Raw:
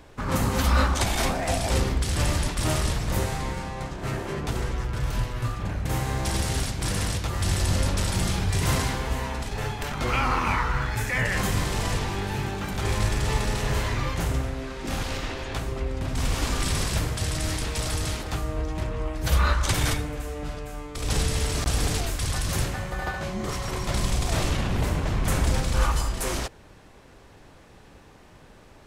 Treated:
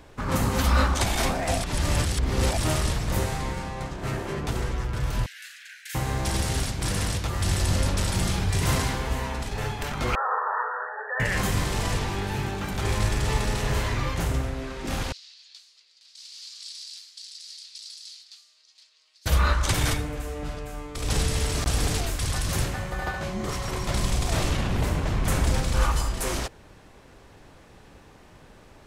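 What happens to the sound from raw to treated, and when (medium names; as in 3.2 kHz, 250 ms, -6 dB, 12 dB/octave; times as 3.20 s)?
1.63–2.58 s: reverse
5.26–5.95 s: steep high-pass 1.5 kHz 96 dB/octave
10.15–11.20 s: brick-wall FIR band-pass 400–1900 Hz
15.12–19.26 s: ladder band-pass 4.9 kHz, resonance 65%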